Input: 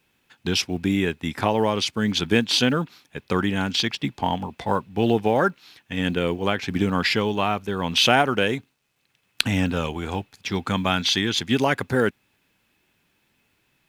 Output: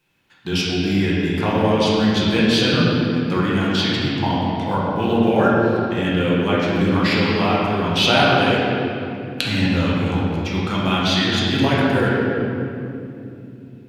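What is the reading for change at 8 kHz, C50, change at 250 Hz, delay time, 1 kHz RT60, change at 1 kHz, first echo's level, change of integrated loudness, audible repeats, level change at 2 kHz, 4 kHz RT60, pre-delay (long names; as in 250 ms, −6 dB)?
−2.5 dB, −2.5 dB, +6.5 dB, no echo audible, 2.4 s, +4.0 dB, no echo audible, +4.5 dB, no echo audible, +4.0 dB, 1.8 s, 6 ms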